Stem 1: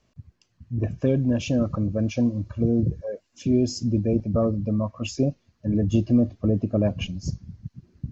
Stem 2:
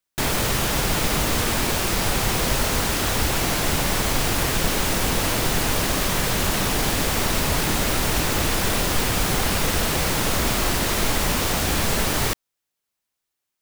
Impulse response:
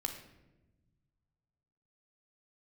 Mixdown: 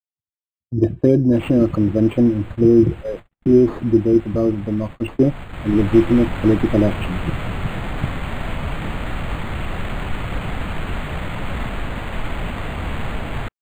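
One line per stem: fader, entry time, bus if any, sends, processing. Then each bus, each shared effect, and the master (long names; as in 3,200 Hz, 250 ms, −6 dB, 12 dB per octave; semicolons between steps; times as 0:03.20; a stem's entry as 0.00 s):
−2.5 dB, 0.00 s, no send, low-pass that shuts in the quiet parts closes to 1,000 Hz, open at −20.5 dBFS; parametric band 340 Hz +14.5 dB 0.37 octaves; automatic gain control gain up to 16.5 dB
0:05.11 −16.5 dB → 0:05.87 −4 dB, 1.15 s, no send, parametric band 1,300 Hz −13 dB 1.6 octaves; comb filter 1.2 ms, depth 70%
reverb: not used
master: noise gate −29 dBFS, range −55 dB; linearly interpolated sample-rate reduction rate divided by 8×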